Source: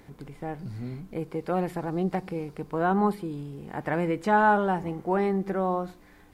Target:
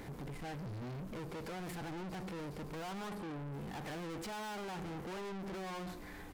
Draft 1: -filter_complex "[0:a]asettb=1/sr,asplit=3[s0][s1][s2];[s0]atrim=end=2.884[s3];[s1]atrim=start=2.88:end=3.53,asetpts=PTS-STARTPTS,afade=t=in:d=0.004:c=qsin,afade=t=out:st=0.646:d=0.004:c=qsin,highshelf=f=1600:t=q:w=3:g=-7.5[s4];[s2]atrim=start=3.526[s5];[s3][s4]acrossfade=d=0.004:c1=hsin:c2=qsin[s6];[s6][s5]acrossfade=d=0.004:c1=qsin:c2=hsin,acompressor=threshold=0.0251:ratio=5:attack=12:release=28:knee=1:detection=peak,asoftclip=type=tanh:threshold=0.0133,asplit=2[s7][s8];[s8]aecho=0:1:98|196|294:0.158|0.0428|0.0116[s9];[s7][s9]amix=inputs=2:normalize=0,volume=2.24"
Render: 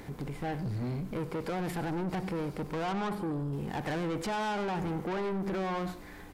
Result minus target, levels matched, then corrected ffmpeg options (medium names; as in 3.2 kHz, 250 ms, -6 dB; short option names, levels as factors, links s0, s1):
echo-to-direct +7 dB; saturation: distortion -4 dB
-filter_complex "[0:a]asettb=1/sr,asplit=3[s0][s1][s2];[s0]atrim=end=2.884[s3];[s1]atrim=start=2.88:end=3.53,asetpts=PTS-STARTPTS,afade=t=in:d=0.004:c=qsin,afade=t=out:st=0.646:d=0.004:c=qsin,highshelf=f=1600:t=q:w=3:g=-7.5[s4];[s2]atrim=start=3.526[s5];[s3][s4]acrossfade=d=0.004:c1=hsin:c2=qsin[s6];[s6][s5]acrossfade=d=0.004:c1=qsin:c2=hsin,acompressor=threshold=0.0251:ratio=5:attack=12:release=28:knee=1:detection=peak,asoftclip=type=tanh:threshold=0.00355,asplit=2[s7][s8];[s8]aecho=0:1:98|196:0.0708|0.0191[s9];[s7][s9]amix=inputs=2:normalize=0,volume=2.24"